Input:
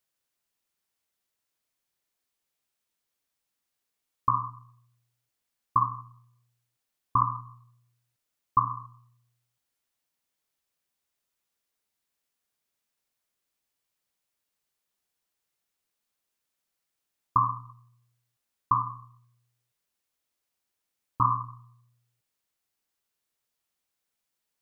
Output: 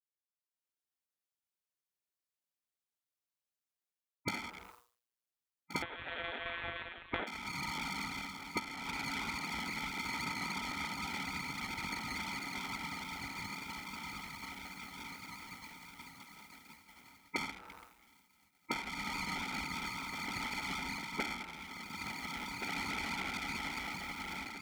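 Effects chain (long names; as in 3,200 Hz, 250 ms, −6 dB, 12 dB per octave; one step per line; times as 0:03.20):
0:17.50–0:18.88: parametric band 610 Hz −6 dB 2.6 octaves
feedback delay with all-pass diffusion 1,928 ms, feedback 49%, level −9 dB
downward expander −56 dBFS
automatic gain control gain up to 15 dB
half-wave rectification
0:05.82–0:07.27: one-pitch LPC vocoder at 8 kHz 170 Hz
gate on every frequency bin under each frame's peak −20 dB weak
downward compressor 12 to 1, threshold −45 dBFS, peak gain reduction 20 dB
level +10 dB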